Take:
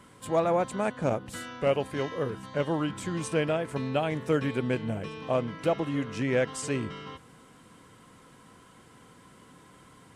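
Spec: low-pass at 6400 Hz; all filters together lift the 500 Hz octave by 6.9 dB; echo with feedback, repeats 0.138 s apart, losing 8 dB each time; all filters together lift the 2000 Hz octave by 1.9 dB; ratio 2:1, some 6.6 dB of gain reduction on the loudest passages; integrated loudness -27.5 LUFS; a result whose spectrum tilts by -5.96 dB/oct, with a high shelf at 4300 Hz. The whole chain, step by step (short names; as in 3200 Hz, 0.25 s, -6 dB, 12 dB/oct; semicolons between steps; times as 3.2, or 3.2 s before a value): LPF 6400 Hz; bell 500 Hz +8 dB; bell 2000 Hz +3 dB; high shelf 4300 Hz -5.5 dB; compressor 2:1, threshold -26 dBFS; feedback echo 0.138 s, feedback 40%, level -8 dB; gain +1 dB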